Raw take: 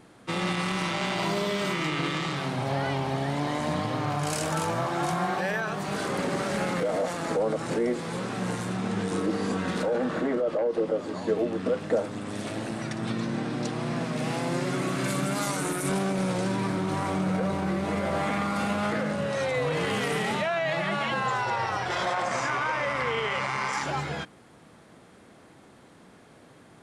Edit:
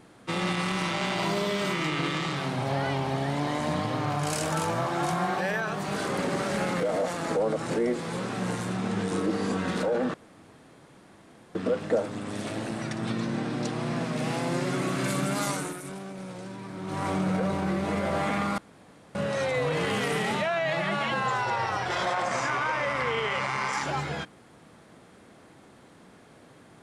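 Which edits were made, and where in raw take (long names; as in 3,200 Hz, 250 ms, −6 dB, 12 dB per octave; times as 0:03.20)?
0:10.14–0:11.55: fill with room tone
0:15.52–0:17.06: duck −12 dB, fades 0.43 s quadratic
0:18.58–0:19.15: fill with room tone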